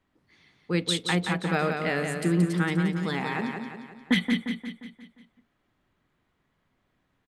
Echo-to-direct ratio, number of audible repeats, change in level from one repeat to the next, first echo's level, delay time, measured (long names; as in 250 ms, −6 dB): −4.5 dB, 5, −6.0 dB, −5.5 dB, 176 ms